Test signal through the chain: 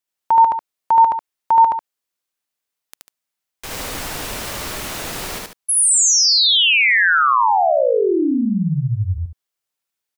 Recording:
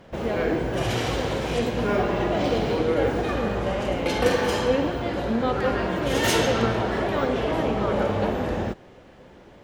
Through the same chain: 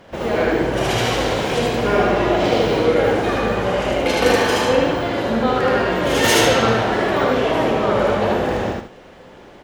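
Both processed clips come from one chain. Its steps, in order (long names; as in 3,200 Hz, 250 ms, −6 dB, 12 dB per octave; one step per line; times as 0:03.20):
low-shelf EQ 280 Hz −6.5 dB
loudspeakers that aren't time-aligned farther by 26 metres −1 dB, 50 metres −10 dB
level +5.5 dB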